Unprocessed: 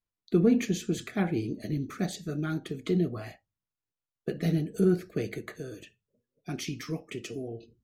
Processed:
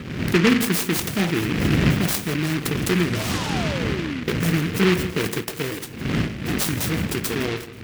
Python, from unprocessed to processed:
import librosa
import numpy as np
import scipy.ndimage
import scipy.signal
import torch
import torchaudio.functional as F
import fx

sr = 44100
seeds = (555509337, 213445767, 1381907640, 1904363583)

p1 = fx.dmg_wind(x, sr, seeds[0], corner_hz=190.0, level_db=-33.0)
p2 = scipy.signal.sosfilt(scipy.signal.butter(2, 92.0, 'highpass', fs=sr, output='sos'), p1)
p3 = fx.high_shelf_res(p2, sr, hz=2900.0, db=8.0, q=1.5)
p4 = fx.over_compress(p3, sr, threshold_db=-36.0, ratio=-1.0)
p5 = p3 + (p4 * 10.0 ** (-2.5 / 20.0))
p6 = fx.spec_paint(p5, sr, seeds[1], shape='fall', start_s=2.93, length_s=1.31, low_hz=230.0, high_hz=2300.0, level_db=-34.0)
p7 = fx.band_shelf(p6, sr, hz=2000.0, db=-15.0, octaves=1.0)
p8 = p7 + fx.echo_feedback(p7, sr, ms=162, feedback_pct=42, wet_db=-15.5, dry=0)
p9 = fx.noise_mod_delay(p8, sr, seeds[2], noise_hz=1900.0, depth_ms=0.22)
y = p9 * 10.0 ** (5.0 / 20.0)